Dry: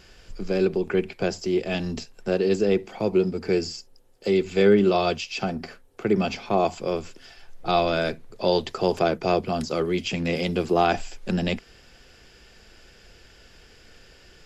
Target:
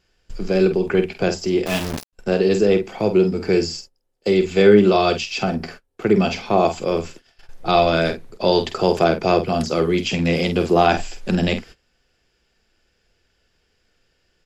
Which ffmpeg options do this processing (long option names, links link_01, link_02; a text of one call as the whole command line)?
ffmpeg -i in.wav -filter_complex "[0:a]aecho=1:1:12|48:0.141|0.355,asettb=1/sr,asplit=3[link_01][link_02][link_03];[link_01]atrim=end=1.664[link_04];[link_02]atrim=start=1.66:end=2.13,asetpts=PTS-STARTPTS,afade=type=in:duration=0.004:curve=qsin,afade=type=out:start_time=0.466:duration=0.004:curve=qsin,aeval=exprs='val(0)*gte(abs(val(0)),0.0447)':channel_layout=same[link_05];[link_03]atrim=start=2.126[link_06];[link_04][link_05]acrossfade=duration=0.004:curve1=hsin:curve2=qsin[link_07];[link_07][link_06]acrossfade=duration=0.004:curve1=qsin:curve2=hsin,agate=range=-20dB:threshold=-43dB:ratio=16:detection=peak,volume=5dB" out.wav